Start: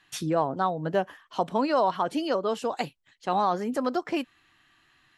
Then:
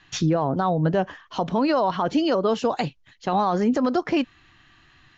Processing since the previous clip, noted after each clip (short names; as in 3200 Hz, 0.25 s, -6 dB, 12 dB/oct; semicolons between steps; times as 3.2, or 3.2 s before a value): steep low-pass 7000 Hz 96 dB/oct; low shelf 160 Hz +12 dB; limiter -19.5 dBFS, peak gain reduction 8 dB; gain +6.5 dB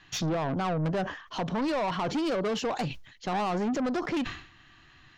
soft clip -24.5 dBFS, distortion -9 dB; sustainer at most 100 dB/s; gain -1 dB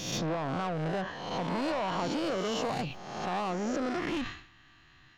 spectral swells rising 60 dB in 1.13 s; gain -5.5 dB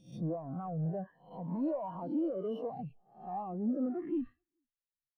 careless resampling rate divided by 3×, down filtered, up hold; echo 0.428 s -20.5 dB; spectral expander 2.5:1; gain -4.5 dB